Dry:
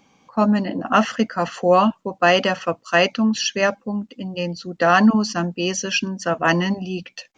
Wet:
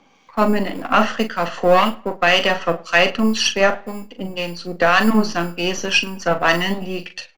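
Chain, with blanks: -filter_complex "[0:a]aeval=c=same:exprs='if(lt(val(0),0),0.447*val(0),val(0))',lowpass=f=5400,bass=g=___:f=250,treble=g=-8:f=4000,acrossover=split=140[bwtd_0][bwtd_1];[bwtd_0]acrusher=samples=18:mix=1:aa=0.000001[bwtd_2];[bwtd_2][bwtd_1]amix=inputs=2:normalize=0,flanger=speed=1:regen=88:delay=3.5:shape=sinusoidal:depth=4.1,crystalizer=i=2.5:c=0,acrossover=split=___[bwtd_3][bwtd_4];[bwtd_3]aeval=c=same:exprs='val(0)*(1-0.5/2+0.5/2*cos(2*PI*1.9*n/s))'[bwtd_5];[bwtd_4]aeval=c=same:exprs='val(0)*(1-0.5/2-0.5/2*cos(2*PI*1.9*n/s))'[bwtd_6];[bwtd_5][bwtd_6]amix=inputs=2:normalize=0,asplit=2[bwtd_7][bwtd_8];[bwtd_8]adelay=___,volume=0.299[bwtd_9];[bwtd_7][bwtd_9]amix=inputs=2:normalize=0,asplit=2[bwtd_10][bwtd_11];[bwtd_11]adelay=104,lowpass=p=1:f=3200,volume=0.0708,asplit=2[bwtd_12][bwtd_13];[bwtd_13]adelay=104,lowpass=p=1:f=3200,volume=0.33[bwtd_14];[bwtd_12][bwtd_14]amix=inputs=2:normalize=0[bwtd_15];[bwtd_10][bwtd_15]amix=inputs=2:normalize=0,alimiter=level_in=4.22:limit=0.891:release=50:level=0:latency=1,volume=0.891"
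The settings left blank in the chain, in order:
-6, 1500, 41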